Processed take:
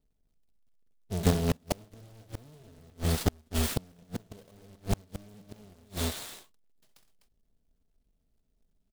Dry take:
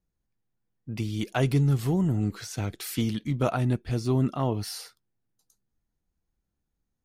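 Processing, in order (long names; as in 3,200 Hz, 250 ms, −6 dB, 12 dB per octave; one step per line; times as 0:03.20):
each half-wave held at its own peak
flat-topped bell 1,900 Hz −10.5 dB
comb filter 3.6 ms, depth 40%
in parallel at −5 dB: bit reduction 4 bits
on the sum: speed change −21%
loudspeakers that aren't time-aligned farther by 22 metres −11 dB, 86 metres −8 dB
gate with flip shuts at −13 dBFS, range −36 dB
short delay modulated by noise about 4,200 Hz, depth 0.047 ms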